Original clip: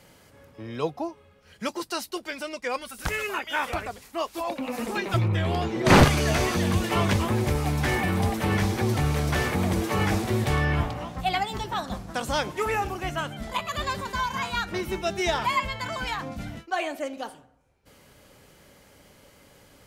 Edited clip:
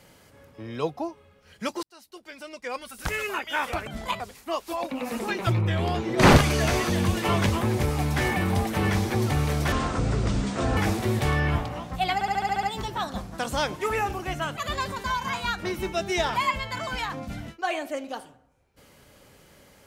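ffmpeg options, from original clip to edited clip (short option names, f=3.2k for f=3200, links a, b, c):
-filter_complex "[0:a]asplit=14[a][b][c][d][e][f][g][h][i][j][k][l][m][n];[a]atrim=end=1.83,asetpts=PTS-STARTPTS,afade=t=out:st=1.826:d=0.004:c=hsin[o];[b]atrim=start=1.83:end=3.872,asetpts=PTS-STARTPTS,afade=t=in:d=1.35[p];[c]atrim=start=13.328:end=13.662[q];[d]atrim=start=3.868:end=9.394[r];[e]atrim=start=9.39:end=10.02,asetpts=PTS-STARTPTS,asetrate=26460,aresample=44100[s];[f]atrim=start=10.016:end=11.462[t];[g]atrim=start=11.388:end=11.462[u];[h]atrim=start=11.388:end=11.462[v];[i]atrim=start=11.388:end=11.462[w];[j]atrim=start=11.388:end=11.462[x];[k]atrim=start=11.388:end=11.462[y];[l]atrim=start=11.388:end=11.462[z];[m]atrim=start=11.388:end=13.332[aa];[n]atrim=start=13.658[ab];[o][p]concat=n=2:v=0:a=1[ac];[ac][q]acrossfade=d=0.004:c1=hsin:c2=hsin[ad];[ad][r]acrossfade=d=0.004:c1=hsin:c2=hsin[ae];[ae][s]acrossfade=d=0.004:c1=hsin:c2=hsin[af];[af][t]acrossfade=d=0.004:c1=hsin:c2=hsin[ag];[ag][u]acrossfade=d=0.004:c1=hsin:c2=hsin[ah];[ah][v]acrossfade=d=0.004:c1=hsin:c2=hsin[ai];[ai][w]acrossfade=d=0.004:c1=hsin:c2=hsin[aj];[aj][x]acrossfade=d=0.004:c1=hsin:c2=hsin[ak];[ak][y]acrossfade=d=0.004:c1=hsin:c2=hsin[al];[al][z]acrossfade=d=0.004:c1=hsin:c2=hsin[am];[am][aa]acrossfade=d=0.004:c1=hsin:c2=hsin[an];[an][ab]acrossfade=d=0.004:c1=hsin:c2=hsin"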